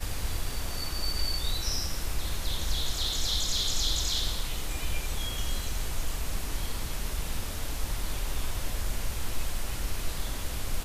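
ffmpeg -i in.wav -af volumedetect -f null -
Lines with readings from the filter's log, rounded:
mean_volume: -28.2 dB
max_volume: -14.6 dB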